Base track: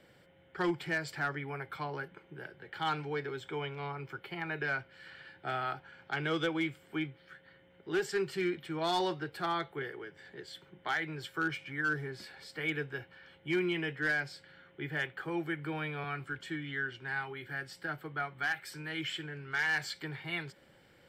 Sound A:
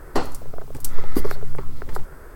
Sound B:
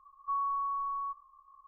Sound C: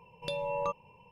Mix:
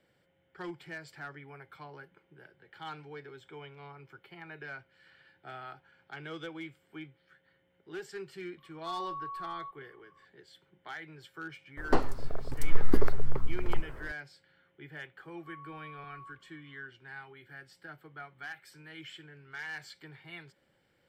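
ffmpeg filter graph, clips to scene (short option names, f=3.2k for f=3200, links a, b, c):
-filter_complex "[2:a]asplit=2[a][b];[0:a]volume=-9.5dB[c];[1:a]lowpass=f=2.4k:p=1[d];[b]alimiter=level_in=10.5dB:limit=-24dB:level=0:latency=1:release=71,volume=-10.5dB[e];[a]atrim=end=1.67,asetpts=PTS-STARTPTS,volume=-6.5dB,afade=t=in:d=0.004:c=hsin,afade=t=out:st=1.666:d=0.004:c=hsin,adelay=378378S[f];[d]atrim=end=2.35,asetpts=PTS-STARTPTS,volume=-3dB,afade=t=in:d=0.004:c=hsin,afade=t=out:st=2.346:d=0.004:c=hsin,adelay=11770[g];[e]atrim=end=1.67,asetpts=PTS-STARTPTS,volume=-11.5dB,afade=t=in:d=0.004:c=hsin,afade=t=out:st=1.666:d=0.004:c=hsin,adelay=15190[h];[c][f][g][h]amix=inputs=4:normalize=0"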